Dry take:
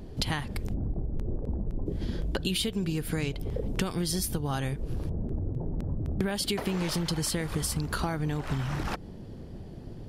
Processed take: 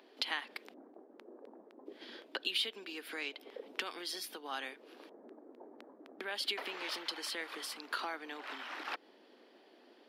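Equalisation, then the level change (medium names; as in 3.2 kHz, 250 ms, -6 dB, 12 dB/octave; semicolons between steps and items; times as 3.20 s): steep high-pass 250 Hz 48 dB/octave; distance through air 370 m; differentiator; +13.0 dB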